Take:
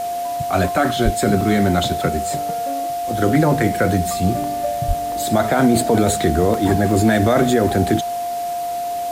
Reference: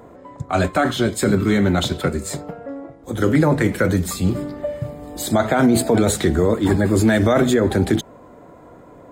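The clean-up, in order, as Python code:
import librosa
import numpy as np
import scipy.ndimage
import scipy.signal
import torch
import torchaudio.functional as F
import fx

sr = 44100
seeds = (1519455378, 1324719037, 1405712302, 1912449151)

y = fx.notch(x, sr, hz=700.0, q=30.0)
y = fx.highpass(y, sr, hz=140.0, slope=24, at=(1.04, 1.16), fade=0.02)
y = fx.highpass(y, sr, hz=140.0, slope=24, at=(4.87, 4.99), fade=0.02)
y = fx.fix_interpolate(y, sr, at_s=(0.68, 1.41, 4.44, 5.12, 6.54, 6.91, 7.69), length_ms=1.2)
y = fx.noise_reduce(y, sr, print_start_s=8.25, print_end_s=8.75, reduce_db=20.0)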